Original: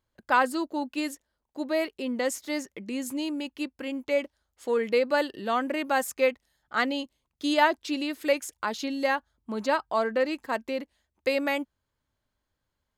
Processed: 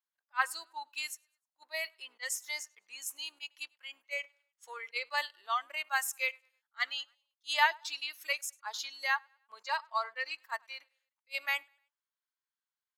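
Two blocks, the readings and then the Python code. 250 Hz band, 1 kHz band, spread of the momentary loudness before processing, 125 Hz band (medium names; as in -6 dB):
under -40 dB, -7.0 dB, 11 LU, no reading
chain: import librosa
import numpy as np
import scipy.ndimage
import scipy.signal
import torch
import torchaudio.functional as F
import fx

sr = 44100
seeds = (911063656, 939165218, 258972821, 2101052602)

y = fx.octave_divider(x, sr, octaves=2, level_db=3.0)
y = fx.echo_feedback(y, sr, ms=102, feedback_pct=45, wet_db=-21.5)
y = fx.noise_reduce_blind(y, sr, reduce_db=12)
y = scipy.signal.sosfilt(scipy.signal.butter(4, 1000.0, 'highpass', fs=sr, output='sos'), y)
y = fx.attack_slew(y, sr, db_per_s=580.0)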